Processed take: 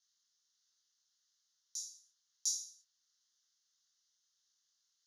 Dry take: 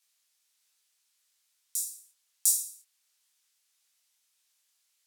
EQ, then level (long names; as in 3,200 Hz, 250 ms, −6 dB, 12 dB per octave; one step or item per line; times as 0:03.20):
transistor ladder low-pass 7,000 Hz, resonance 70%
phaser with its sweep stopped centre 2,400 Hz, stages 6
+5.0 dB